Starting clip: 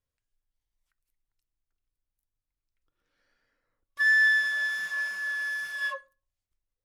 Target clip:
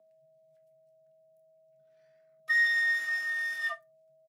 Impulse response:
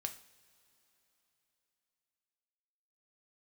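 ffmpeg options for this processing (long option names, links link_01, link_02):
-filter_complex "[1:a]atrim=start_sample=2205,afade=type=out:start_time=0.16:duration=0.01,atrim=end_sample=7497[link_01];[0:a][link_01]afir=irnorm=-1:irlink=0,aeval=exprs='val(0)+0.000891*sin(2*PI*520*n/s)':channel_layout=same,atempo=1.6,afreqshift=120"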